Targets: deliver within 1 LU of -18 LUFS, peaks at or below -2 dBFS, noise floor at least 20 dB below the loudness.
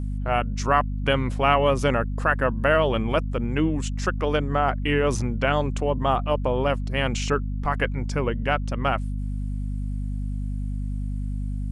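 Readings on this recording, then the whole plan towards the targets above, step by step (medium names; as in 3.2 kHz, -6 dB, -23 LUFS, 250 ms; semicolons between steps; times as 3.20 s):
hum 50 Hz; highest harmonic 250 Hz; hum level -25 dBFS; loudness -24.5 LUFS; peak level -5.0 dBFS; loudness target -18.0 LUFS
-> hum notches 50/100/150/200/250 Hz; trim +6.5 dB; peak limiter -2 dBFS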